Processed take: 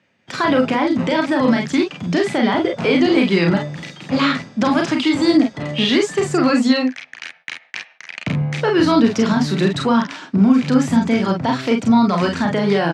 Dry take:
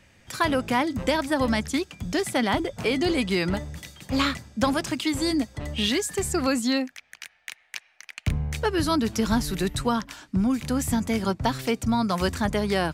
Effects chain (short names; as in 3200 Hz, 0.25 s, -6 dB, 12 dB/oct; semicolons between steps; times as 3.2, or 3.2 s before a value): gate -53 dBFS, range -16 dB; reverse; upward compressor, threshold -39 dBFS; reverse; limiter -16 dBFS, peak gain reduction 8 dB; in parallel at -8 dB: one-sided clip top -35 dBFS; on the sum: HPF 140 Hz 24 dB/oct; air absorption 140 m; early reflections 35 ms -5.5 dB, 47 ms -5.5 dB; gain +7.5 dB